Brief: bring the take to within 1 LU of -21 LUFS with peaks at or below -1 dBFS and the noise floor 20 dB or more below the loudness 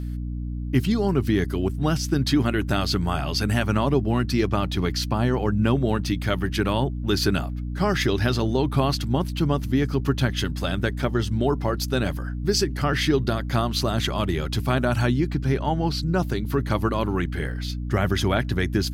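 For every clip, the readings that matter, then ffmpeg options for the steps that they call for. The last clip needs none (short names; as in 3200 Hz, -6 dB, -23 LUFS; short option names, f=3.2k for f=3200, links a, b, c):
hum 60 Hz; harmonics up to 300 Hz; hum level -27 dBFS; loudness -24.0 LUFS; peak -8.0 dBFS; loudness target -21.0 LUFS
-> -af "bandreject=f=60:t=h:w=4,bandreject=f=120:t=h:w=4,bandreject=f=180:t=h:w=4,bandreject=f=240:t=h:w=4,bandreject=f=300:t=h:w=4"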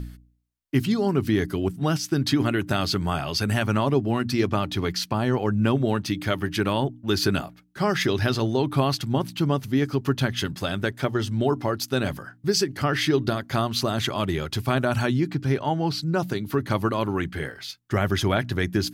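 hum none; loudness -25.0 LUFS; peak -8.0 dBFS; loudness target -21.0 LUFS
-> -af "volume=4dB"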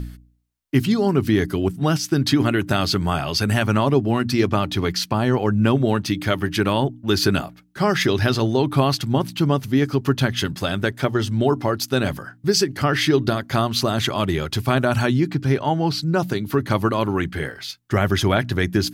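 loudness -21.0 LUFS; peak -4.0 dBFS; noise floor -49 dBFS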